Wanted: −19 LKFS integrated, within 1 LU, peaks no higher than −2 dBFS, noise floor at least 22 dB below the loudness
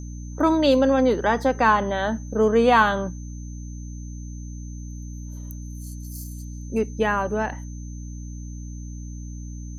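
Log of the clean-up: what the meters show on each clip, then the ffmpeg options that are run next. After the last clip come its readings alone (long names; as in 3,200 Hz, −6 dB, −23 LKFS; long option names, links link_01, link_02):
mains hum 60 Hz; hum harmonics up to 300 Hz; level of the hum −32 dBFS; interfering tone 6,200 Hz; level of the tone −48 dBFS; integrated loudness −21.0 LKFS; sample peak −4.5 dBFS; target loudness −19.0 LKFS
→ -af "bandreject=frequency=60:width_type=h:width=6,bandreject=frequency=120:width_type=h:width=6,bandreject=frequency=180:width_type=h:width=6,bandreject=frequency=240:width_type=h:width=6,bandreject=frequency=300:width_type=h:width=6"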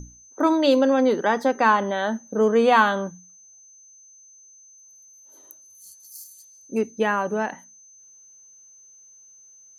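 mains hum none found; interfering tone 6,200 Hz; level of the tone −48 dBFS
→ -af "bandreject=frequency=6200:width=30"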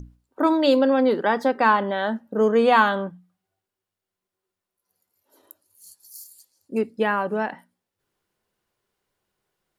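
interfering tone none found; integrated loudness −21.0 LKFS; sample peak −4.5 dBFS; target loudness −19.0 LKFS
→ -af "volume=2dB"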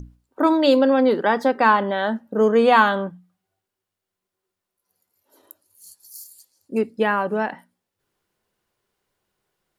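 integrated loudness −19.0 LKFS; sample peak −2.5 dBFS; background noise floor −84 dBFS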